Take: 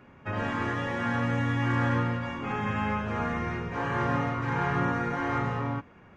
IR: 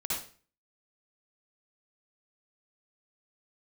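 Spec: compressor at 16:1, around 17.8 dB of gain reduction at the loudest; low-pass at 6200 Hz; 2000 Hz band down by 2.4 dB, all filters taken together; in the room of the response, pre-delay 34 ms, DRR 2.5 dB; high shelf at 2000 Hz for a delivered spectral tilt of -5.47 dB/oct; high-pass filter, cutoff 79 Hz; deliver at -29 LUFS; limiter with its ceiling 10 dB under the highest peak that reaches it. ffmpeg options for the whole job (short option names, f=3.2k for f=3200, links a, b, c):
-filter_complex "[0:a]highpass=79,lowpass=6.2k,highshelf=f=2k:g=6,equalizer=f=2k:t=o:g=-6.5,acompressor=threshold=-41dB:ratio=16,alimiter=level_in=16.5dB:limit=-24dB:level=0:latency=1,volume=-16.5dB,asplit=2[a][b];[1:a]atrim=start_sample=2205,adelay=34[c];[b][c]afir=irnorm=-1:irlink=0,volume=-7.5dB[d];[a][d]amix=inputs=2:normalize=0,volume=18.5dB"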